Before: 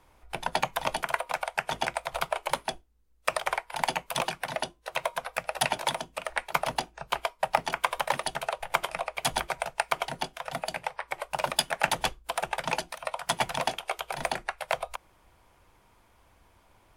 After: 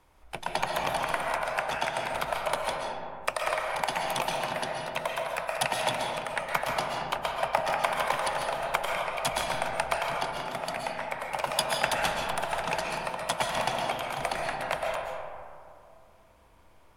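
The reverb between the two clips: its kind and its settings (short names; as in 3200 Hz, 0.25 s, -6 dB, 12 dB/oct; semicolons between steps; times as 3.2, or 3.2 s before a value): digital reverb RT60 2.4 s, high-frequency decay 0.35×, pre-delay 95 ms, DRR -1 dB; gain -2.5 dB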